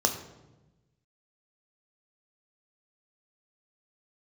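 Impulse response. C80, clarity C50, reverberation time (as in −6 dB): 11.5 dB, 9.5 dB, 1.1 s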